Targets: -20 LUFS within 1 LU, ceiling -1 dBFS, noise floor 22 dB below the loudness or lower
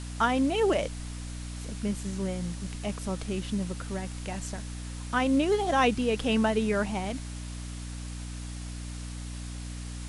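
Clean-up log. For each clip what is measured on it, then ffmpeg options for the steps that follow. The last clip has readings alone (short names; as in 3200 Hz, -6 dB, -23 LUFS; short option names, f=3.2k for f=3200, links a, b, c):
hum 60 Hz; harmonics up to 300 Hz; hum level -35 dBFS; noise floor -38 dBFS; noise floor target -53 dBFS; loudness -30.5 LUFS; peak -11.5 dBFS; loudness target -20.0 LUFS
-> -af "bandreject=f=60:t=h:w=4,bandreject=f=120:t=h:w=4,bandreject=f=180:t=h:w=4,bandreject=f=240:t=h:w=4,bandreject=f=300:t=h:w=4"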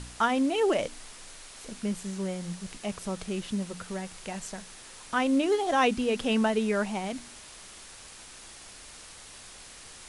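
hum none; noise floor -48 dBFS; noise floor target -51 dBFS
-> -af "afftdn=nr=6:nf=-48"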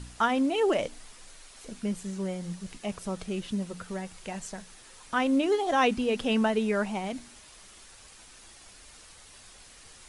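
noise floor -52 dBFS; loudness -29.0 LUFS; peak -12.5 dBFS; loudness target -20.0 LUFS
-> -af "volume=9dB"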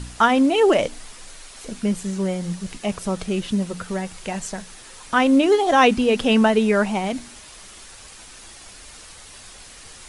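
loudness -20.0 LUFS; peak -3.5 dBFS; noise floor -43 dBFS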